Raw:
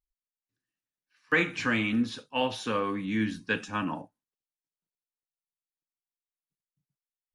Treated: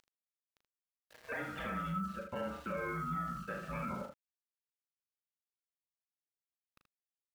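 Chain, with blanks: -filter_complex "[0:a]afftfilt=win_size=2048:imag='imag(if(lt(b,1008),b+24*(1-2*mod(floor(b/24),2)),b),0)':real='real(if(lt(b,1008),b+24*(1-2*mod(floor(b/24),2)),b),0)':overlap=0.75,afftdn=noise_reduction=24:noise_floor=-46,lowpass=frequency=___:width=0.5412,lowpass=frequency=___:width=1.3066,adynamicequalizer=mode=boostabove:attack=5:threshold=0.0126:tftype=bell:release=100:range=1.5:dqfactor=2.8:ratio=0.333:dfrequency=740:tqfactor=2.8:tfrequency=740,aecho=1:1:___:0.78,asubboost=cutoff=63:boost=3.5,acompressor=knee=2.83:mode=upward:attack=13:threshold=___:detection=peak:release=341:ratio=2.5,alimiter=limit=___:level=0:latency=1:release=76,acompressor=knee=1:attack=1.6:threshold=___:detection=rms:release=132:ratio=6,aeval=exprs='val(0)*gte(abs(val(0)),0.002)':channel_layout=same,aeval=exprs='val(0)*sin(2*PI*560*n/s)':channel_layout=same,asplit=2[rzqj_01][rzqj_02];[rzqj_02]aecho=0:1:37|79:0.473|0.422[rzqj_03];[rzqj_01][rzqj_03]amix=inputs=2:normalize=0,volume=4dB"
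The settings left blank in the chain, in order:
1800, 1800, 6.7, -31dB, -16dB, -38dB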